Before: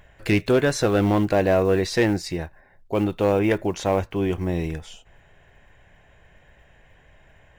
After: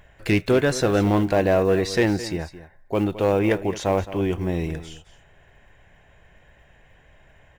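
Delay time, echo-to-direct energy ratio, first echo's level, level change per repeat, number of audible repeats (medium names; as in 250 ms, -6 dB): 216 ms, -14.5 dB, -14.5 dB, no regular repeats, 1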